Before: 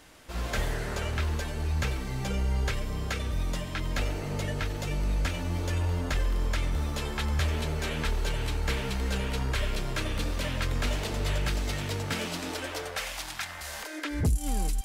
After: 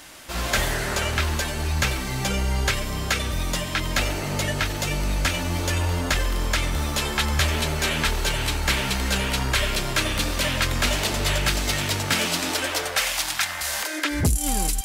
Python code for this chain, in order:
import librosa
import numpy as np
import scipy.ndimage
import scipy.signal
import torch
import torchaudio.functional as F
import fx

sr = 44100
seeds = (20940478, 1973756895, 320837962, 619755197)

y = fx.tilt_eq(x, sr, slope=1.5)
y = fx.notch(y, sr, hz=460.0, q=12.0)
y = y * 10.0 ** (9.0 / 20.0)